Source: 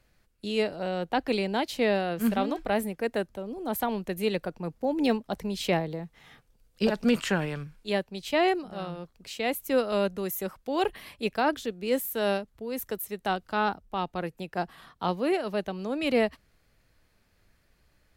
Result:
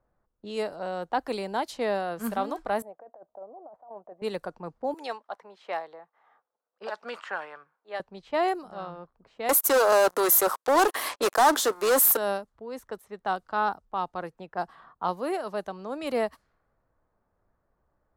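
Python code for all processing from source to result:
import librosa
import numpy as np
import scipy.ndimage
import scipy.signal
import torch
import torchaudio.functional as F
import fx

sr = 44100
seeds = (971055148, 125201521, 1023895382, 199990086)

y = fx.chain(x, sr, fx.bandpass_q(hz=670.0, q=4.5),
    fx.over_compress(threshold_db=-43.0, ratio=-1.0), at=(2.82, 4.22))
y = fx.chain(y, sr, fx.highpass(hz=710.0, slope=12),
    fx.notch(hz=1000.0, q=24.0), at=(4.94, 8.0))
y = fx.chain(y, sr, fx.highpass(hz=300.0, slope=24),
    fx.leveller(passes=5), at=(9.49, 12.17))
y = fx.curve_eq(y, sr, hz=(1100.0, 2500.0, 8600.0), db=(0, -17, -7))
y = fx.env_lowpass(y, sr, base_hz=930.0, full_db=-25.0)
y = fx.tilt_shelf(y, sr, db=-9.0, hz=680.0)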